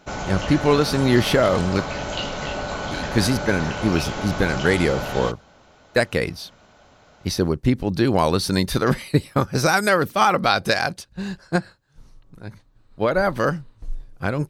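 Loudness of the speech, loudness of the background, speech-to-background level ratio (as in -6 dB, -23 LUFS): -21.5 LUFS, -28.5 LUFS, 7.0 dB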